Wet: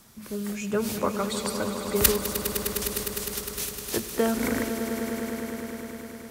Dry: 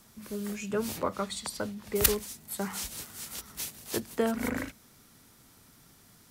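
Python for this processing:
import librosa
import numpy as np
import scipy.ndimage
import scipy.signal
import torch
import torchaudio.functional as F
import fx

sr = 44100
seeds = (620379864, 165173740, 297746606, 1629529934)

y = fx.tube_stage(x, sr, drive_db=47.0, bias=0.7, at=(2.33, 2.82))
y = fx.echo_swell(y, sr, ms=102, loudest=5, wet_db=-11.5)
y = y * 10.0 ** (3.5 / 20.0)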